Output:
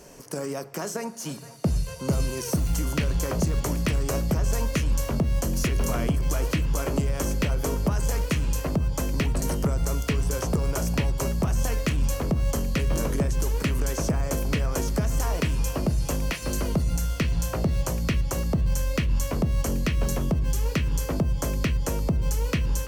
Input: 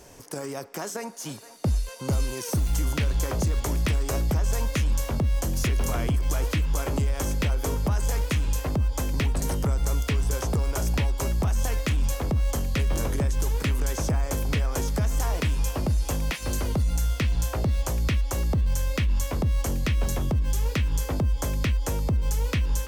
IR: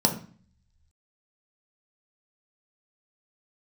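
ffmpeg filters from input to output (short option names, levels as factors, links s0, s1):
-filter_complex "[0:a]asplit=2[s0][s1];[1:a]atrim=start_sample=2205,asetrate=32634,aresample=44100[s2];[s1][s2]afir=irnorm=-1:irlink=0,volume=0.0501[s3];[s0][s3]amix=inputs=2:normalize=0"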